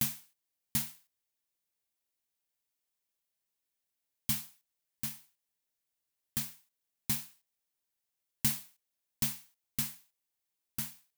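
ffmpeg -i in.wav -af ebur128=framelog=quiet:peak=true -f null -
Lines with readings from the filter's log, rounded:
Integrated loudness:
  I:         -35.5 LUFS
  Threshold: -46.6 LUFS
Loudness range:
  LRA:         6.2 LU
  Threshold: -59.4 LUFS
  LRA low:   -42.8 LUFS
  LRA high:  -36.6 LUFS
True peak:
  Peak:      -12.7 dBFS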